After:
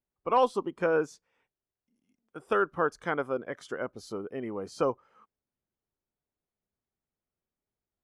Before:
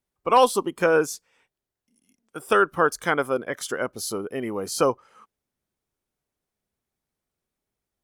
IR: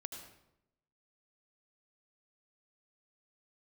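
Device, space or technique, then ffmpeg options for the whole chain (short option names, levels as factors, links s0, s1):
through cloth: -af "lowpass=7400,highshelf=f=2800:g=-11.5,volume=0.501"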